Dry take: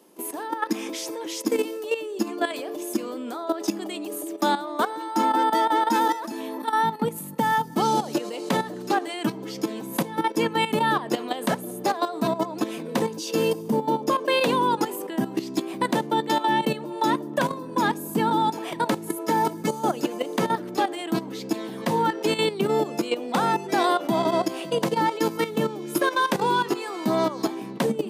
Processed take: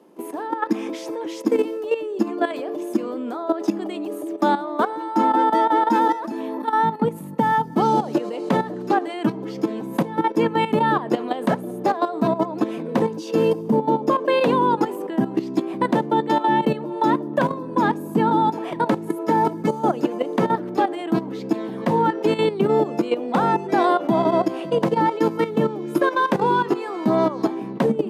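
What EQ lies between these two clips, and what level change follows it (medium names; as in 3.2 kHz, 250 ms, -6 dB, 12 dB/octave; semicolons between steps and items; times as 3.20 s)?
treble shelf 2.3 kHz -11.5 dB; treble shelf 5.1 kHz -6 dB; +5.0 dB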